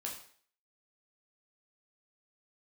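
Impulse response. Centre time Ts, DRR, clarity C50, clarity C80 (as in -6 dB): 28 ms, -2.0 dB, 6.5 dB, 10.0 dB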